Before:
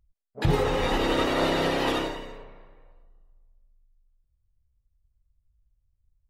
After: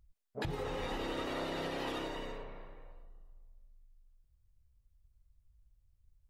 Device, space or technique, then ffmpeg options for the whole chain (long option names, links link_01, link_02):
serial compression, peaks first: -af "acompressor=threshold=-32dB:ratio=5,acompressor=threshold=-45dB:ratio=1.5,volume=1.5dB"